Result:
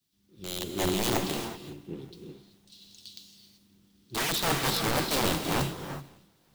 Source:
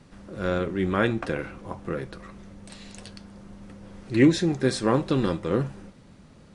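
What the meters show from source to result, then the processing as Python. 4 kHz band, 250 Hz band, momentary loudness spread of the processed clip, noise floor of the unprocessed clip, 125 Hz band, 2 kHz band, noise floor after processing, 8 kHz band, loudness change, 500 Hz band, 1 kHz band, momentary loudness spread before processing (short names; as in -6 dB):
+6.5 dB, -9.5 dB, 20 LU, -52 dBFS, -6.5 dB, -1.5 dB, -67 dBFS, +8.0 dB, -3.5 dB, -7.0 dB, +0.5 dB, 24 LU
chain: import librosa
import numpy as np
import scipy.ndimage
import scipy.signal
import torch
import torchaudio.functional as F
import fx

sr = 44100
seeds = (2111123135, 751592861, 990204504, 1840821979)

p1 = scipy.signal.sosfilt(scipy.signal.butter(2, 84.0, 'highpass', fs=sr, output='sos'), x)
p2 = fx.env_lowpass_down(p1, sr, base_hz=2900.0, full_db=-19.5)
p3 = scipy.signal.sosfilt(scipy.signal.ellip(3, 1.0, 40, [380.0, 3300.0], 'bandstop', fs=sr, output='sos'), p2)
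p4 = fx.band_shelf(p3, sr, hz=3700.0, db=11.5, octaves=1.7)
p5 = 10.0 ** (-10.5 / 20.0) * np.tanh(p4 / 10.0 ** (-10.5 / 20.0))
p6 = fx.dmg_noise_colour(p5, sr, seeds[0], colour='white', level_db=-54.0)
p7 = (np.mod(10.0 ** (21.0 / 20.0) * p6 + 1.0, 2.0) - 1.0) / 10.0 ** (21.0 / 20.0)
p8 = p7 + fx.echo_swing(p7, sr, ms=925, ratio=1.5, feedback_pct=47, wet_db=-21.5, dry=0)
p9 = fx.rev_gated(p8, sr, seeds[1], gate_ms=410, shape='rising', drr_db=1.5)
p10 = fx.band_widen(p9, sr, depth_pct=100)
y = F.gain(torch.from_numpy(p10), -3.0).numpy()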